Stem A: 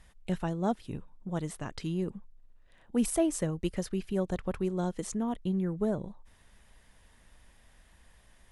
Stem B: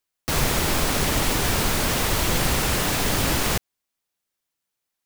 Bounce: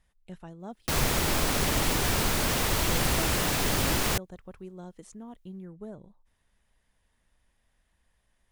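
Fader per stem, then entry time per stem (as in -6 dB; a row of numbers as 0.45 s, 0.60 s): -12.0 dB, -4.0 dB; 0.00 s, 0.60 s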